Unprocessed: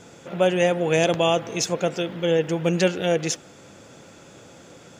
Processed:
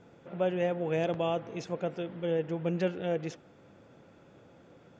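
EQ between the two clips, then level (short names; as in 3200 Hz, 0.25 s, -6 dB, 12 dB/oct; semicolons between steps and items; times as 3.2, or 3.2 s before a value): tape spacing loss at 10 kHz 28 dB; -8.0 dB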